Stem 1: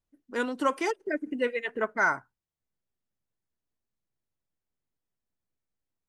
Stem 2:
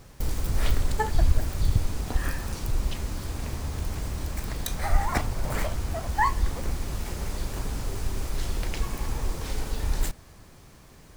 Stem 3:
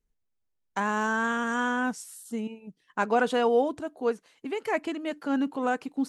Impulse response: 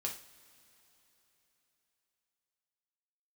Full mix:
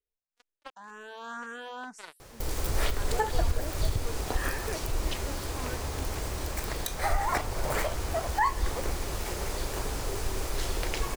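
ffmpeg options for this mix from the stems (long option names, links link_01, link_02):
-filter_complex "[0:a]acrusher=bits=2:mix=0:aa=0.5,volume=-18.5dB,asplit=2[link_01][link_02];[1:a]adelay=2200,volume=3dB[link_03];[2:a]alimiter=limit=-19.5dB:level=0:latency=1,volume=23.5dB,asoftclip=hard,volume=-23.5dB,asplit=2[link_04][link_05];[link_05]afreqshift=1.9[link_06];[link_04][link_06]amix=inputs=2:normalize=1,volume=-7dB[link_07];[link_02]apad=whole_len=268539[link_08];[link_07][link_08]sidechaincompress=threshold=-49dB:ratio=12:attack=33:release=708[link_09];[link_01][link_03][link_09]amix=inputs=3:normalize=0,lowshelf=frequency=300:width_type=q:width=1.5:gain=-6.5,alimiter=limit=-16dB:level=0:latency=1:release=213"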